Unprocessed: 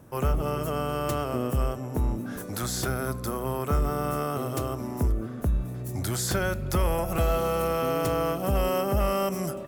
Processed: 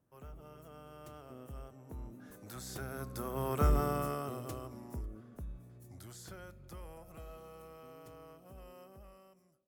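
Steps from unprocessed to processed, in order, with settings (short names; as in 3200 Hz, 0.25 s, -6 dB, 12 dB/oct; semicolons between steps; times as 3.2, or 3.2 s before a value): ending faded out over 0.87 s; Doppler pass-by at 3.7, 9 m/s, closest 2.4 m; gain -3 dB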